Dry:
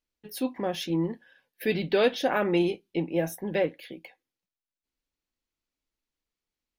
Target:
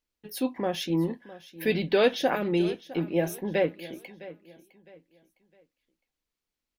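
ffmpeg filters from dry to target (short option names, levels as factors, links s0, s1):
-filter_complex "[0:a]asettb=1/sr,asplit=3[s0][s1][s2];[s0]atrim=end=2.354[s3];[s1]atrim=start=2.35:end=3.1,asetpts=PTS-STARTPTS,afade=t=in:d=0.004:c=qsin,afade=t=out:st=0.746:d=0.004:c=qsin,acrossover=split=410|3000[s4][s5][s6];[s5]acompressor=threshold=0.00708:ratio=2[s7];[s4][s7][s6]amix=inputs=3:normalize=0[s8];[s2]atrim=start=3.096[s9];[s3][s8]acrossfade=d=0.004:c1=hsin:c2=qsin[s10];[s10][s9]acrossfade=d=0.004:c1=qsin:c2=hsin,aecho=1:1:659|1318|1977:0.133|0.0427|0.0137,volume=1.12"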